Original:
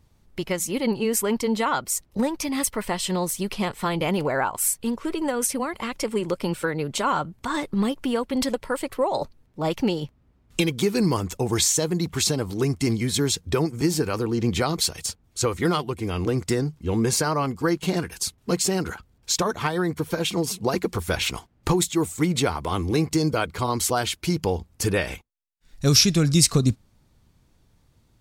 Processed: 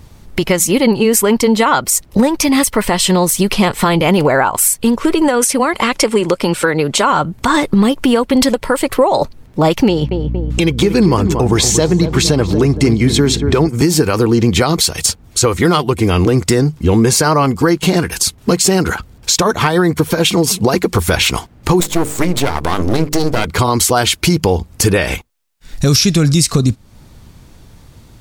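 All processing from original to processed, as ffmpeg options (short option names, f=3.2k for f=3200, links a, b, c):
-filter_complex "[0:a]asettb=1/sr,asplit=3[a][b][c];[a]atrim=end=5.284[d];[b]atrim=start=5.28:end=7.1,asetpts=PTS-STARTPTS,afade=t=in:d=0.004:c=qsin,afade=t=out:st=1.816:d=0.004:c=qsin,lowpass=12k,lowshelf=f=200:g=-7.5[e];[c]atrim=start=7.096[f];[d][e]acrossfade=d=0.004:c1=hsin:c2=qsin[g];[g][f]acrossfade=d=0.004:c1=qsin:c2=hsin,asettb=1/sr,asplit=3[h][i][j];[h]atrim=end=9.884[k];[i]atrim=start=9.88:end=13.69,asetpts=PTS-STARTPTS,afade=t=in:d=0.004:c=qsin,afade=t=out:st=3.806:d=0.004:c=qsin,lowpass=f=3.7k:p=1,aeval=exprs='val(0)+0.0112*(sin(2*PI*60*n/s)+sin(2*PI*2*60*n/s)/2+sin(2*PI*3*60*n/s)/3+sin(2*PI*4*60*n/s)/4+sin(2*PI*5*60*n/s)/5)':c=same,asplit=2[l][m];[m]adelay=232,lowpass=f=1.3k:p=1,volume=-10dB,asplit=2[n][o];[o]adelay=232,lowpass=f=1.3k:p=1,volume=0.49,asplit=2[p][q];[q]adelay=232,lowpass=f=1.3k:p=1,volume=0.49,asplit=2[r][s];[s]adelay=232,lowpass=f=1.3k:p=1,volume=0.49,asplit=2[t][u];[u]adelay=232,lowpass=f=1.3k:p=1,volume=0.49[v];[l][n][p][r][t][v]amix=inputs=6:normalize=0,atrim=end_sample=168021[w];[j]atrim=start=13.686[x];[k][w]acrossfade=d=0.004:c1=hsin:c2=qsin[y];[y][x]acrossfade=d=0.004:c1=qsin:c2=hsin,asettb=1/sr,asplit=3[z][aa][ab];[z]atrim=end=21.804[ac];[aa]atrim=start=21.8:end=23.45,asetpts=PTS-STARTPTS,afade=t=in:d=0.004:c=qsin,afade=t=out:st=1.646:d=0.004:c=qsin,aeval=exprs='max(val(0),0)':c=same,bandreject=f=50:t=h:w=6,bandreject=f=100:t=h:w=6,bandreject=f=150:t=h:w=6,bandreject=f=200:t=h:w=6,bandreject=f=250:t=h:w=6,bandreject=f=300:t=h:w=6,bandreject=f=350:t=h:w=6,bandreject=f=400:t=h:w=6,bandreject=f=450:t=h:w=6,bandreject=f=500:t=h:w=6[ad];[ab]atrim=start=23.446[ae];[ac][ad]acrossfade=d=0.004:c1=hsin:c2=qsin[af];[af][ae]acrossfade=d=0.004:c1=qsin:c2=hsin,acompressor=threshold=-32dB:ratio=2.5,alimiter=level_in=21dB:limit=-1dB:release=50:level=0:latency=1,volume=-1dB"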